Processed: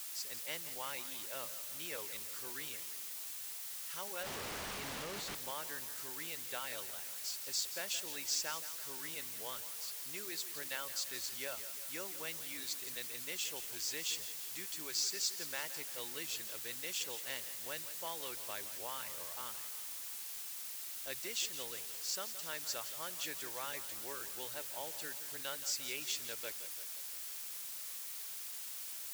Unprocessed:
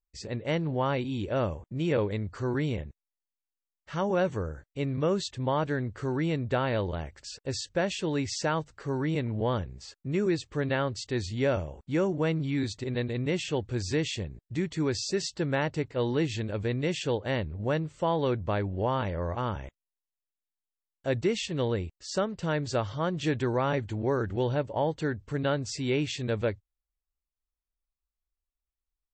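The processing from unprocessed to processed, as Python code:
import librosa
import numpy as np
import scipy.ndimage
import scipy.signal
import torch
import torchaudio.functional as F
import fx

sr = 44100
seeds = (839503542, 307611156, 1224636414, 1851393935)

p1 = fx.dereverb_blind(x, sr, rt60_s=0.65)
p2 = fx.dmg_noise_colour(p1, sr, seeds[0], colour='pink', level_db=-44.0)
p3 = np.diff(p2, prepend=0.0)
p4 = fx.schmitt(p3, sr, flips_db=-46.0, at=(4.23, 5.35))
p5 = p4 + fx.echo_feedback(p4, sr, ms=171, feedback_pct=59, wet_db=-13, dry=0)
y = F.gain(torch.from_numpy(p5), 2.5).numpy()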